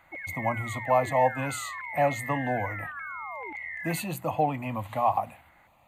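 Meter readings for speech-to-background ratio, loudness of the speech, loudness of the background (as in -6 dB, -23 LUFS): 7.0 dB, -29.0 LUFS, -36.0 LUFS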